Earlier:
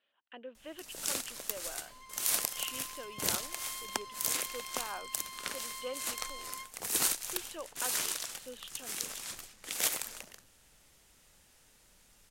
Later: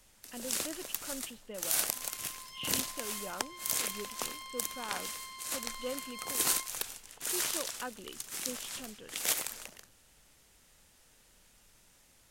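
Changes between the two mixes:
speech: remove high-pass 410 Hz 12 dB/octave; first sound: entry -0.55 s

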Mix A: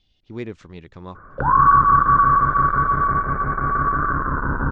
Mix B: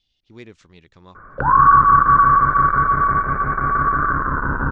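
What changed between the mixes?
speech -10.0 dB; master: add treble shelf 2.3 kHz +11.5 dB

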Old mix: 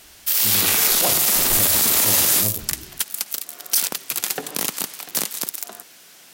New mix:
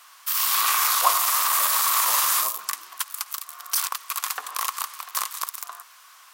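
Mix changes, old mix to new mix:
background -5.5 dB; master: add resonant high-pass 1.1 kHz, resonance Q 8.9

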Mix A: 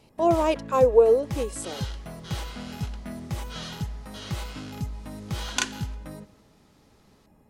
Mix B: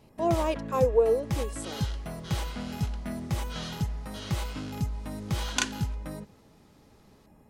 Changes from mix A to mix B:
speech -5.5 dB; first sound +3.5 dB; reverb: off

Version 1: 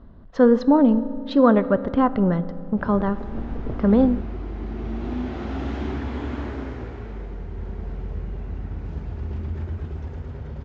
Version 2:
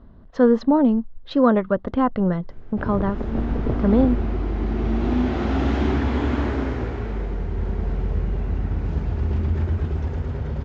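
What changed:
background +7.0 dB; reverb: off

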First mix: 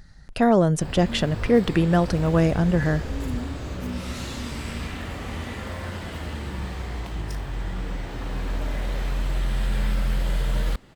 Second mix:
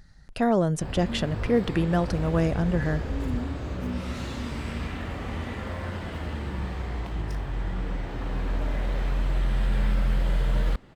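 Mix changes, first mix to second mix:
speech -4.5 dB; background: add treble shelf 4 kHz -10.5 dB

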